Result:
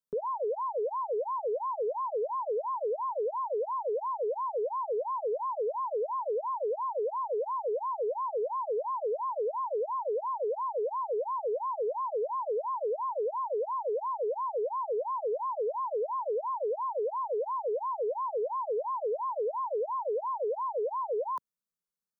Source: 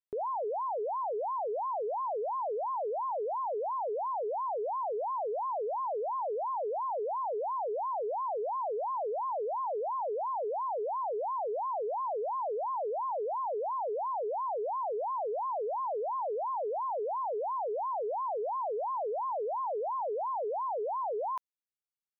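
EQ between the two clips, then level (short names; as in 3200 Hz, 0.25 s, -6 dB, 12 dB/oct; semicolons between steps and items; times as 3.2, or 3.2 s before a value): bell 150 Hz +8.5 dB 2.6 oct; fixed phaser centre 490 Hz, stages 8; +1.5 dB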